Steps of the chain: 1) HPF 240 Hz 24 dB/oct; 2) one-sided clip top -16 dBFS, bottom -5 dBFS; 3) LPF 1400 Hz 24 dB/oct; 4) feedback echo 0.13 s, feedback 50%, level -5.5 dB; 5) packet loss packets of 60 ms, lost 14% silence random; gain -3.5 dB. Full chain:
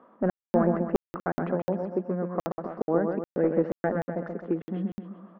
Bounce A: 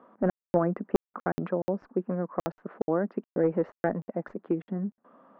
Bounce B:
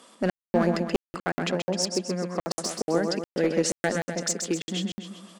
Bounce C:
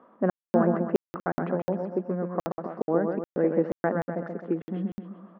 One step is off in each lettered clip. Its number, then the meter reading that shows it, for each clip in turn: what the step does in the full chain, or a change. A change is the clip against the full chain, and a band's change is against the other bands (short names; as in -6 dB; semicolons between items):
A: 4, loudness change -2.0 LU; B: 3, 2 kHz band +7.0 dB; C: 2, distortion -13 dB